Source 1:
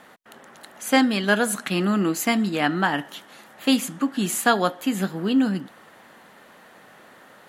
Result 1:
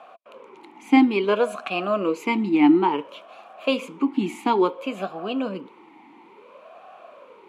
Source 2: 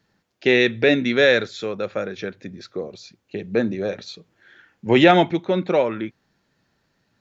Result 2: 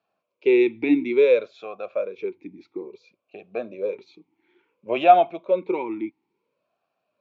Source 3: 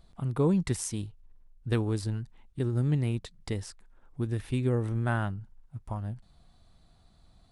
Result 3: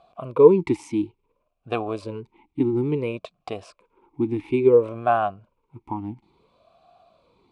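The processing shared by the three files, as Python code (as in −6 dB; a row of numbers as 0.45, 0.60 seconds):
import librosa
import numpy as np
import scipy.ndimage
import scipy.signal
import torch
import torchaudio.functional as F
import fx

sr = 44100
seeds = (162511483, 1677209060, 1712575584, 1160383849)

y = fx.vowel_sweep(x, sr, vowels='a-u', hz=0.58)
y = y * 10.0 ** (-24 / 20.0) / np.sqrt(np.mean(np.square(y)))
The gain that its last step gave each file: +13.5, +5.5, +20.5 decibels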